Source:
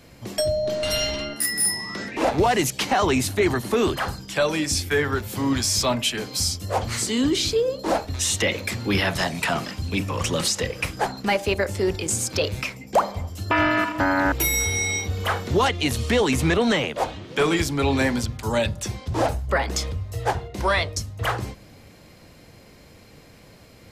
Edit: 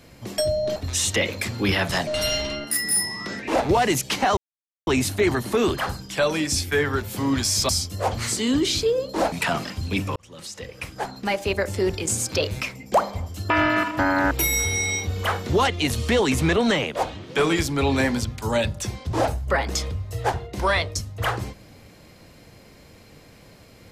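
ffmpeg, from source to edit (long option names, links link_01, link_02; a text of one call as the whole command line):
ffmpeg -i in.wav -filter_complex "[0:a]asplit=7[link_01][link_02][link_03][link_04][link_05][link_06][link_07];[link_01]atrim=end=0.762[link_08];[link_02]atrim=start=8.018:end=9.332[link_09];[link_03]atrim=start=0.758:end=3.06,asetpts=PTS-STARTPTS,afade=type=out:start_time=2.298:duration=0.004:curve=hsin,apad=pad_dur=0.5[link_10];[link_04]atrim=start=3.06:end=5.882,asetpts=PTS-STARTPTS,afade=type=in:duration=0.004:curve=hsin[link_11];[link_05]atrim=start=6.388:end=8.022[link_12];[link_06]atrim=start=9.328:end=10.17,asetpts=PTS-STARTPTS,afade=type=out:start_time=0.838:duration=0.004:curve=hsin[link_13];[link_07]atrim=start=10.17,asetpts=PTS-STARTPTS,afade=type=in:duration=1.57[link_14];[link_08][link_09]acrossfade=duration=0.004:curve1=hsin:curve2=hsin[link_15];[link_10][link_11]concat=n=2:v=0:a=1[link_16];[link_15][link_16]acrossfade=duration=0.004:curve1=hsin:curve2=hsin[link_17];[link_17][link_12]acrossfade=duration=0.004:curve1=hsin:curve2=hsin[link_18];[link_13][link_14]concat=n=2:v=0:a=1[link_19];[link_18][link_19]acrossfade=duration=0.004:curve1=hsin:curve2=hsin" out.wav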